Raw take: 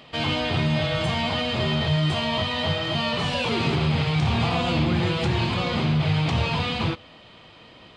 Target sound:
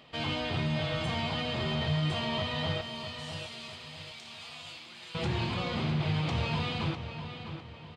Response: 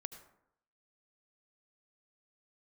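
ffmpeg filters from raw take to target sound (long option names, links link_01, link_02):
-filter_complex "[0:a]asettb=1/sr,asplit=3[link_01][link_02][link_03];[link_01]atrim=end=2.814[link_04];[link_02]atrim=start=2.81:end=5.15,asetpts=PTS-STARTPTS,afade=type=in:duration=0.004:curve=qsin,afade=type=out:start_time=2.336:duration=0.004:curve=qsin,aderivative[link_05];[link_03]atrim=start=5.146[link_06];[link_04][link_05]acrossfade=duration=0.004:curve1=hsin:curve2=qsin[link_07];[link_07][link_06]acrossfade=duration=0.004:curve1=qsin:curve2=hsin,asplit=2[link_08][link_09];[link_09]adelay=653,lowpass=frequency=4700:poles=1,volume=-9dB,asplit=2[link_10][link_11];[link_11]adelay=653,lowpass=frequency=4700:poles=1,volume=0.41,asplit=2[link_12][link_13];[link_13]adelay=653,lowpass=frequency=4700:poles=1,volume=0.41,asplit=2[link_14][link_15];[link_15]adelay=653,lowpass=frequency=4700:poles=1,volume=0.41,asplit=2[link_16][link_17];[link_17]adelay=653,lowpass=frequency=4700:poles=1,volume=0.41[link_18];[link_08][link_10][link_12][link_14][link_16][link_18]amix=inputs=6:normalize=0,volume=-8dB"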